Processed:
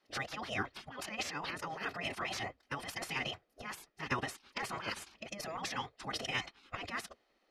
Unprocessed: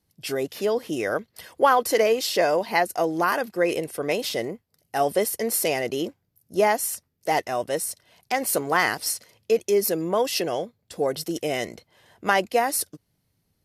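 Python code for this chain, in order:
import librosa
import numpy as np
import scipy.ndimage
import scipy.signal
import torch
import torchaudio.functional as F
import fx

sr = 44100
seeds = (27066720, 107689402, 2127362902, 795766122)

y = fx.over_compress(x, sr, threshold_db=-29.0, ratio=-1.0)
y = scipy.signal.sosfilt(scipy.signal.butter(2, 2900.0, 'lowpass', fs=sr, output='sos'), y)
y = fx.hum_notches(y, sr, base_hz=60, count=4)
y = y + 0.35 * np.pad(y, (int(1.6 * sr / 1000.0), 0))[:len(y)]
y = fx.stretch_vocoder(y, sr, factor=0.55)
y = fx.spec_gate(y, sr, threshold_db=-15, keep='weak')
y = y * 10.0 ** (4.5 / 20.0)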